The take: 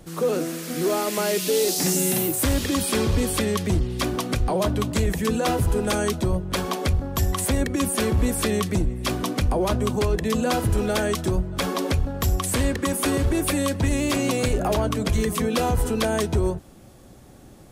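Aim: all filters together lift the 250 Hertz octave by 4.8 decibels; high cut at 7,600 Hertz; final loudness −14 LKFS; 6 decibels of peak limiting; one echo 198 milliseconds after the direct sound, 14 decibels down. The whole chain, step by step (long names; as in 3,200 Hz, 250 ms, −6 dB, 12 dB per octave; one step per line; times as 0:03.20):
low-pass filter 7,600 Hz
parametric band 250 Hz +6 dB
brickwall limiter −15 dBFS
single-tap delay 198 ms −14 dB
level +10 dB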